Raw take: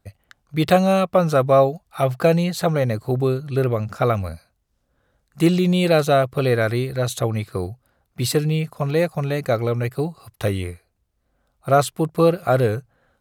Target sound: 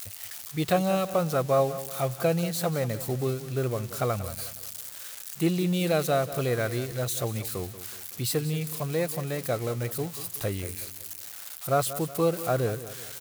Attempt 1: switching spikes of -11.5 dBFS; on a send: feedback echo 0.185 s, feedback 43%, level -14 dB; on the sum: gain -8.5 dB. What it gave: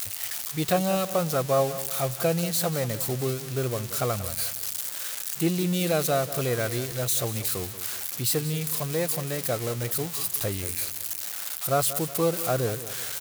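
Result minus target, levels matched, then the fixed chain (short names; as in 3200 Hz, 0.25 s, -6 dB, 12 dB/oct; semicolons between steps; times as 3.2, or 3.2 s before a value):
switching spikes: distortion +7 dB
switching spikes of -19 dBFS; on a send: feedback echo 0.185 s, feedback 43%, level -14 dB; on the sum: gain -8.5 dB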